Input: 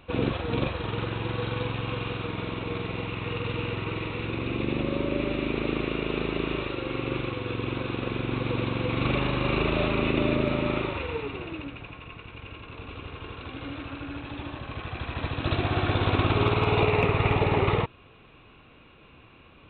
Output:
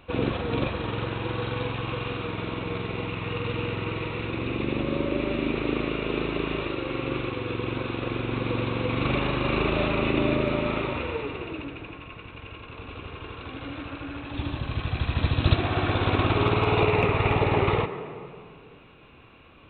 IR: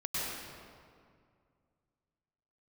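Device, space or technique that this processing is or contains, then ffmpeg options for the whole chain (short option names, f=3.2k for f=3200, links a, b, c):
filtered reverb send: -filter_complex "[0:a]asettb=1/sr,asplit=3[a][b][c];[a]atrim=end=14.344[d];[b]atrim=start=14.34:end=15.54,asetpts=PTS-STARTPTS,afade=t=in:d=0.004:c=qsin,afade=t=out:st=1.196:d=0.004:c=qsin,bass=f=250:g=9,treble=f=4k:g=14[e];[c]atrim=start=15.536[f];[d][e]acrossfade=d=0.004:c1=hsin:c2=qsin[g];[g][f]acrossfade=d=0.004:c1=qsin:c2=hsin,asplit=2[h][i];[i]highpass=f=150:w=0.5412,highpass=f=150:w=1.3066,lowpass=3.2k[j];[1:a]atrim=start_sample=2205[k];[j][k]afir=irnorm=-1:irlink=0,volume=-14.5dB[l];[h][l]amix=inputs=2:normalize=0"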